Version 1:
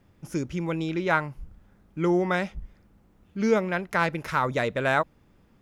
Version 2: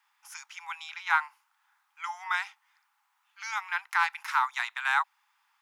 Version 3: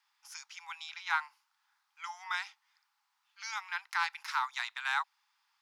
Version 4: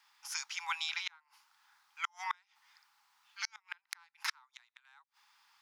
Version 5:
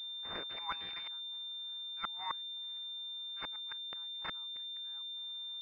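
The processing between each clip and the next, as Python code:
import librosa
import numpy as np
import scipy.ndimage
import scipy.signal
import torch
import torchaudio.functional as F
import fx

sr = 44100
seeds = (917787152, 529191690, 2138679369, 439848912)

y1 = scipy.signal.sosfilt(scipy.signal.butter(16, 820.0, 'highpass', fs=sr, output='sos'), x)
y2 = fx.peak_eq(y1, sr, hz=4700.0, db=10.0, octaves=0.95)
y2 = y2 * 10.0 ** (-7.0 / 20.0)
y3 = fx.gate_flip(y2, sr, shuts_db=-28.0, range_db=-39)
y3 = y3 * 10.0 ** (8.0 / 20.0)
y4 = fx.pwm(y3, sr, carrier_hz=3600.0)
y4 = y4 * 10.0 ** (-1.0 / 20.0)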